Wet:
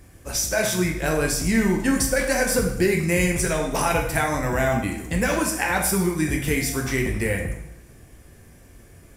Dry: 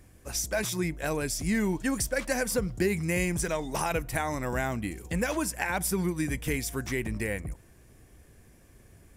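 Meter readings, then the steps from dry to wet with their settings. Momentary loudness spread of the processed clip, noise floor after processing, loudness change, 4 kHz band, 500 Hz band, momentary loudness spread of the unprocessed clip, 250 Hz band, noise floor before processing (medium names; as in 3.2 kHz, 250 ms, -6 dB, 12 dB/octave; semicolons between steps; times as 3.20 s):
4 LU, -49 dBFS, +7.5 dB, +8.0 dB, +7.5 dB, 5 LU, +7.0 dB, -56 dBFS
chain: plate-style reverb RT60 0.78 s, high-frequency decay 0.9×, DRR 0.5 dB; trim +5 dB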